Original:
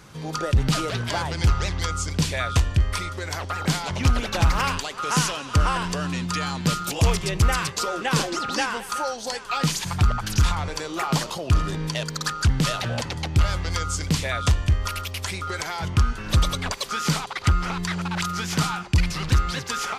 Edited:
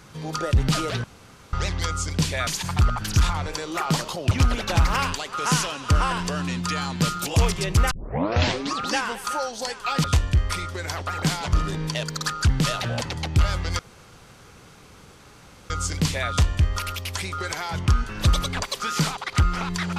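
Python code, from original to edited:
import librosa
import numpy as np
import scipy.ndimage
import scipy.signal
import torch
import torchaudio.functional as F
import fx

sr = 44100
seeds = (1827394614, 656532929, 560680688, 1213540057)

y = fx.edit(x, sr, fx.room_tone_fill(start_s=1.04, length_s=0.49),
    fx.swap(start_s=2.47, length_s=1.49, other_s=9.69, other_length_s=1.84),
    fx.tape_start(start_s=7.56, length_s=0.92),
    fx.insert_room_tone(at_s=13.79, length_s=1.91), tone=tone)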